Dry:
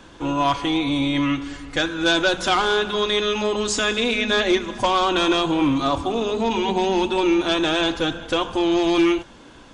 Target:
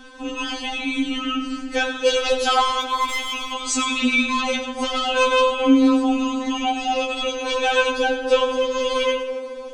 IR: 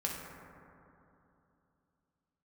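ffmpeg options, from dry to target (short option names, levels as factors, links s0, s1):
-filter_complex "[0:a]asplit=3[s0][s1][s2];[s0]afade=t=out:st=2.8:d=0.02[s3];[s1]volume=8.41,asoftclip=hard,volume=0.119,afade=t=in:st=2.8:d=0.02,afade=t=out:st=3.52:d=0.02[s4];[s2]afade=t=in:st=3.52:d=0.02[s5];[s3][s4][s5]amix=inputs=3:normalize=0,asplit=2[s6][s7];[1:a]atrim=start_sample=2205,adelay=97[s8];[s7][s8]afir=irnorm=-1:irlink=0,volume=0.251[s9];[s6][s9]amix=inputs=2:normalize=0,afftfilt=real='re*3.46*eq(mod(b,12),0)':imag='im*3.46*eq(mod(b,12),0)':win_size=2048:overlap=0.75,volume=1.58"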